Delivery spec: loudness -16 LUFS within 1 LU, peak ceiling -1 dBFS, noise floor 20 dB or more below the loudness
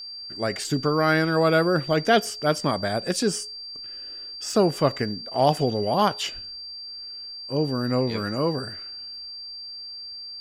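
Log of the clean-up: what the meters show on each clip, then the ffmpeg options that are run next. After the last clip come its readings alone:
steady tone 4700 Hz; tone level -35 dBFS; loudness -25.0 LUFS; peak -6.0 dBFS; loudness target -16.0 LUFS
-> -af "bandreject=f=4.7k:w=30"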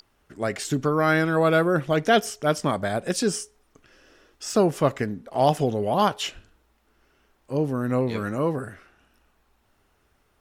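steady tone none; loudness -24.0 LUFS; peak -6.0 dBFS; loudness target -16.0 LUFS
-> -af "volume=8dB,alimiter=limit=-1dB:level=0:latency=1"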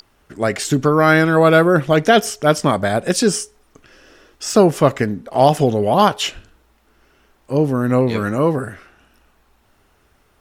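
loudness -16.0 LUFS; peak -1.0 dBFS; noise floor -58 dBFS

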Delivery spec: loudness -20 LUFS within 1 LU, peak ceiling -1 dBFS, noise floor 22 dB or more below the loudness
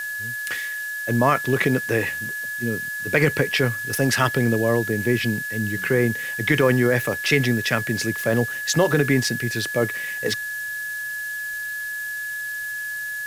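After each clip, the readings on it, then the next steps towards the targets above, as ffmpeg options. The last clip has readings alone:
steady tone 1700 Hz; tone level -27 dBFS; noise floor -30 dBFS; noise floor target -45 dBFS; loudness -22.5 LUFS; peak -5.5 dBFS; loudness target -20.0 LUFS
-> -af "bandreject=f=1.7k:w=30"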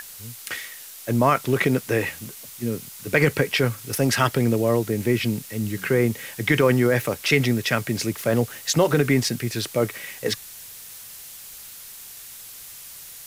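steady tone none; noise floor -41 dBFS; noise floor target -45 dBFS
-> -af "afftdn=nr=6:nf=-41"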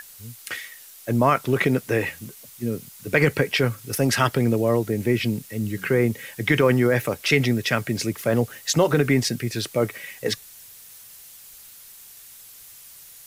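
noise floor -46 dBFS; loudness -23.0 LUFS; peak -5.5 dBFS; loudness target -20.0 LUFS
-> -af "volume=3dB"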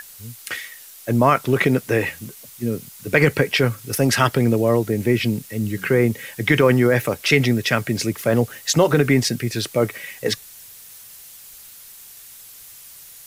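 loudness -20.0 LUFS; peak -2.5 dBFS; noise floor -43 dBFS

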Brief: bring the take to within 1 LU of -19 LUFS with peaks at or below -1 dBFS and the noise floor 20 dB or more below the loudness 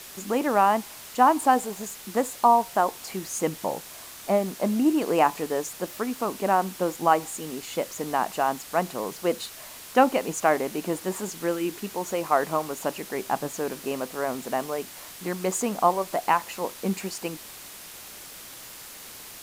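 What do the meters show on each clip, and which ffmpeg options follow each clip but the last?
noise floor -43 dBFS; noise floor target -46 dBFS; loudness -26.0 LUFS; peak -5.5 dBFS; loudness target -19.0 LUFS
-> -af "afftdn=nr=6:nf=-43"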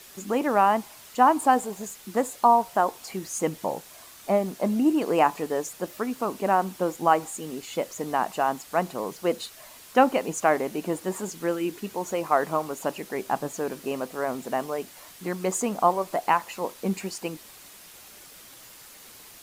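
noise floor -48 dBFS; loudness -26.0 LUFS; peak -5.5 dBFS; loudness target -19.0 LUFS
-> -af "volume=7dB,alimiter=limit=-1dB:level=0:latency=1"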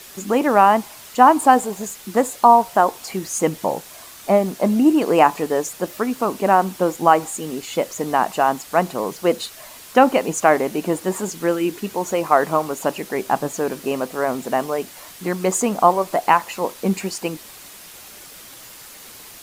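loudness -19.5 LUFS; peak -1.0 dBFS; noise floor -41 dBFS

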